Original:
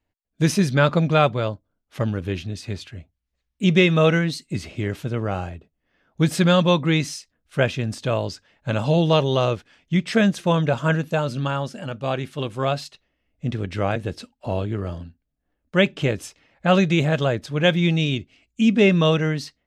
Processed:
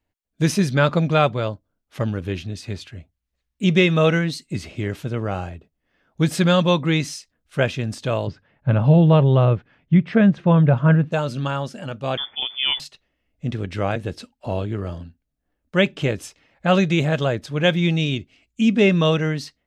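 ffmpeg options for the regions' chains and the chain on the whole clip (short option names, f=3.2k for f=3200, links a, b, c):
-filter_complex "[0:a]asettb=1/sr,asplit=3[a][b][c];[a]atrim=end=8.274[d];[b]atrim=start=8.27:end=11.12,asetpts=PTS-STARTPTS,afade=t=in:d=0.004:c=qsin,afade=t=out:st=2.846:d=0.004:c=qsin,lowpass=2k,equalizer=f=130:t=o:w=1.1:g=9.5[e];[c]atrim=start=11.116[f];[d][e]acrossfade=d=0.004:c1=hsin:c2=qsin[g];[g][f]acrossfade=d=0.004:c1=qsin:c2=hsin,asettb=1/sr,asplit=3[h][i][j];[h]atrim=end=12.174[k];[i]atrim=start=12.17:end=12.8,asetpts=PTS-STARTPTS,afade=t=in:d=0.004:c=qsin,afade=t=out:st=0.626:d=0.004:c=qsin,lowpass=f=3.1k:t=q:w=0.5098,lowpass=f=3.1k:t=q:w=0.6013,lowpass=f=3.1k:t=q:w=0.9,lowpass=f=3.1k:t=q:w=2.563,afreqshift=-3600,deesser=0.4[l];[j]atrim=start=12.796[m];[k][l]acrossfade=d=0.004:c1=hsin:c2=qsin[n];[n][m]acrossfade=d=0.004:c1=qsin:c2=hsin"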